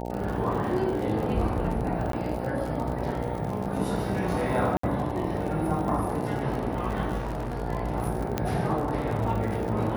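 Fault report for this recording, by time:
buzz 60 Hz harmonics 15 -33 dBFS
crackle 67/s -32 dBFS
2.12–2.13 gap 13 ms
4.77–4.83 gap 64 ms
7.17–7.62 clipped -27 dBFS
8.38 pop -12 dBFS

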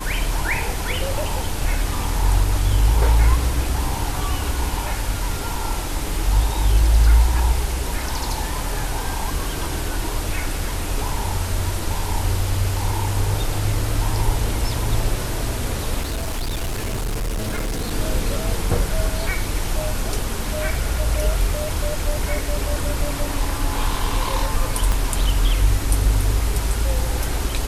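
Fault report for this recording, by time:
16.01–17.93 clipped -20.5 dBFS
24.92 pop -8 dBFS

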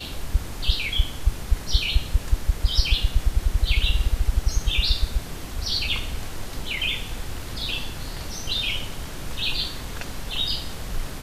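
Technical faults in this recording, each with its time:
6.59 gap 3.2 ms

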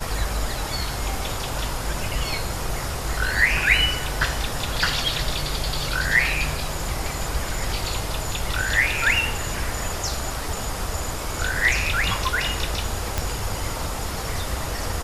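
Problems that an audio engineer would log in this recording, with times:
13.18 pop

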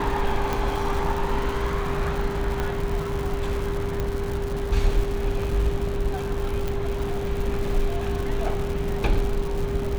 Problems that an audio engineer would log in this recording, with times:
crackle 200/s -29 dBFS
tone 400 Hz -29 dBFS
0.53 pop
2.6 pop -13 dBFS
4 pop -14 dBFS
6.68 pop

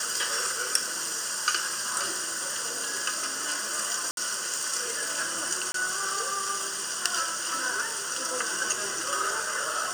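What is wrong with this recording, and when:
4.11–4.17 gap 62 ms
5.72–5.74 gap 23 ms

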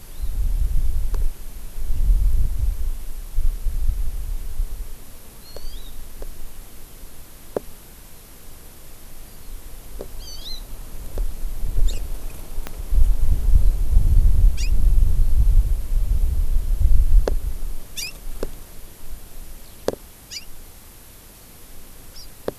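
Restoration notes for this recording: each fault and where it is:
12.67 pop -12 dBFS

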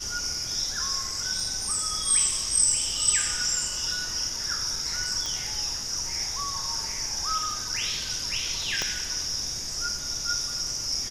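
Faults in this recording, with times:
1.4 gap 3.1 ms
5.26 pop
8.82 pop -12 dBFS

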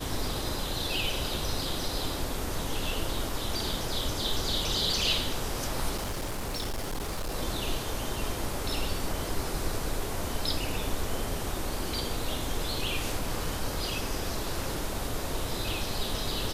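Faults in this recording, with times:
5.96–7.35 clipped -29 dBFS

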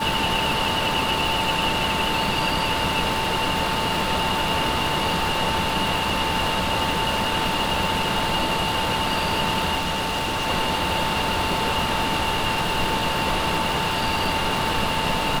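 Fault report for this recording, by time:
crackle 440/s -28 dBFS
tone 890 Hz -27 dBFS
9.77–10.48 clipped -21 dBFS

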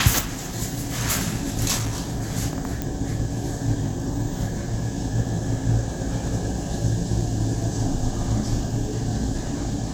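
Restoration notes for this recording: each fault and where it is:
1.77–2.23 clipped -22 dBFS
2.82 pop -12 dBFS

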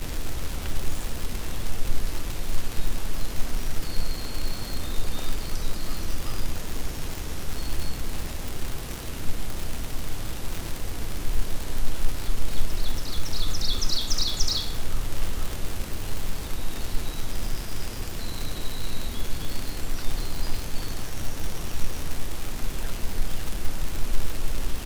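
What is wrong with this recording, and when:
crackle 140/s -24 dBFS

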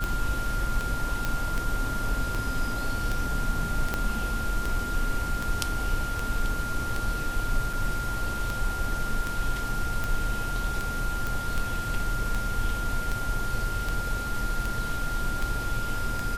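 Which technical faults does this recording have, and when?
tick 78 rpm
tone 1400 Hz -32 dBFS
1.25 pop
3.94 pop -12 dBFS
7.73 gap 4.4 ms
11.27 pop

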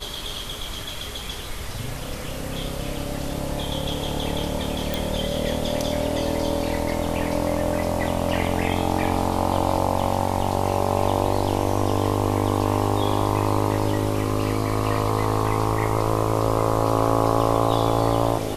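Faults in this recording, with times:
4.94 pop

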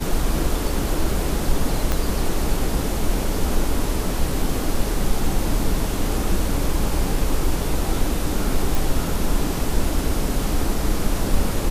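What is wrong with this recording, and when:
1.92 pop -7 dBFS
8.75 pop

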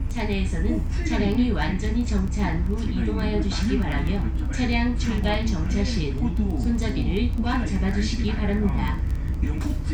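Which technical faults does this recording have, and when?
crackle 11/s -27 dBFS

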